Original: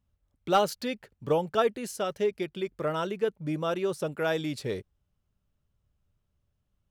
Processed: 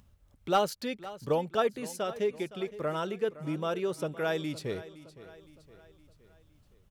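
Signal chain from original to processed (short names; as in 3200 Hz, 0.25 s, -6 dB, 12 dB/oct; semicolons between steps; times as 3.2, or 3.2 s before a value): upward compressor, threshold -46 dBFS; on a send: feedback echo 0.514 s, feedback 49%, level -16.5 dB; on the sum: gain -2.5 dB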